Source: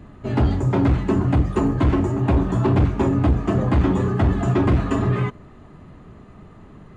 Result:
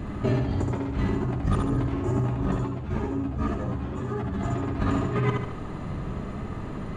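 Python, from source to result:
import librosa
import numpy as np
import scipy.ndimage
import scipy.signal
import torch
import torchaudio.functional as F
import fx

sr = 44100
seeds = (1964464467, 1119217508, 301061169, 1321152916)

y = fx.over_compress(x, sr, threshold_db=-28.0, ratio=-1.0)
y = fx.echo_feedback(y, sr, ms=73, feedback_pct=49, wet_db=-3.5)
y = fx.ensemble(y, sr, at=(2.65, 4.44), fade=0.02)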